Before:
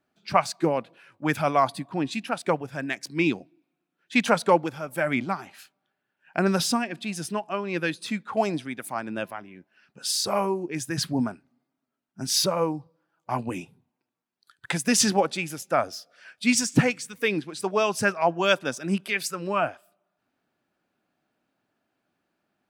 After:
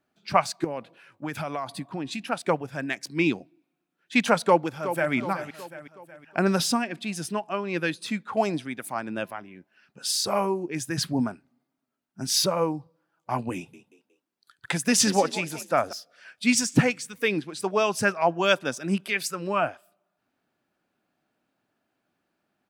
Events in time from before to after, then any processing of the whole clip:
0:00.64–0:02.20: downward compressor, threshold −27 dBFS
0:04.42–0:05.13: delay throw 370 ms, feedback 50%, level −10.5 dB
0:13.55–0:15.93: echo with shifted repeats 182 ms, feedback 37%, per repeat +47 Hz, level −15 dB

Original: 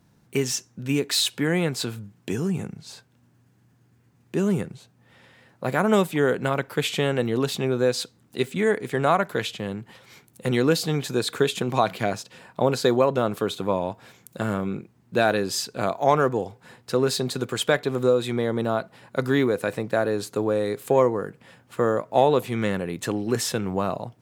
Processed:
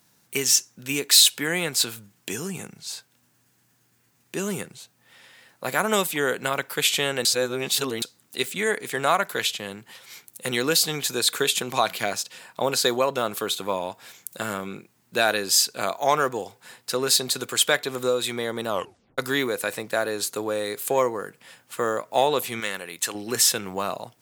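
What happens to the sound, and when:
0:07.25–0:08.02: reverse
0:18.69: tape stop 0.49 s
0:22.60–0:23.15: low-shelf EQ 480 Hz −10.5 dB
whole clip: spectral tilt +3.5 dB per octave

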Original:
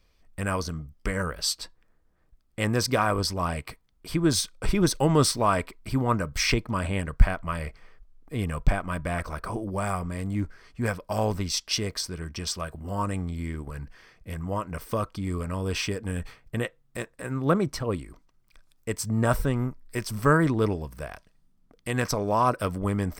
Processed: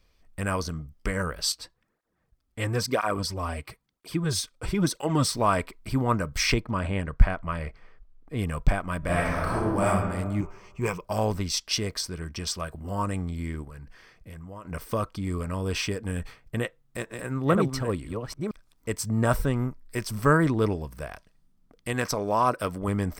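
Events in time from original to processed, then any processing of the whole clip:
0:01.52–0:05.33: through-zero flanger with one copy inverted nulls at 1 Hz, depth 6.5 ms
0:06.60–0:08.37: low-pass filter 3,200 Hz 6 dB per octave
0:08.98–0:09.87: thrown reverb, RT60 1.4 s, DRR −5 dB
0:10.40–0:11.05: EQ curve with evenly spaced ripples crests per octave 0.74, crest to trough 12 dB
0:13.64–0:14.65: downward compressor 3 to 1, threshold −41 dBFS
0:16.60–0:18.93: delay that plays each chunk backwards 478 ms, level −5 dB
0:21.93–0:22.88: low-shelf EQ 140 Hz −7.5 dB

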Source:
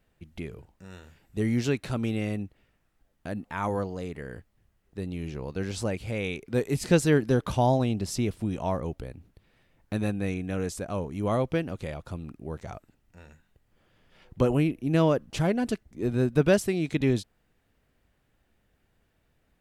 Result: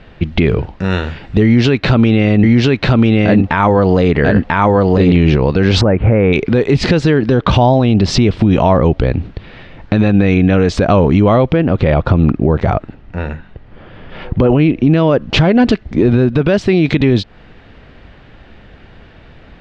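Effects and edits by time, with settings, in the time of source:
0:01.44–0:05.17: single-tap delay 991 ms −3.5 dB
0:05.81–0:06.33: low-pass filter 1,700 Hz 24 dB per octave
0:11.52–0:14.50: high-shelf EQ 3,100 Hz −12 dB
whole clip: low-pass filter 4,200 Hz 24 dB per octave; downward compressor 4 to 1, threshold −33 dBFS; boost into a limiter +31 dB; level −1 dB

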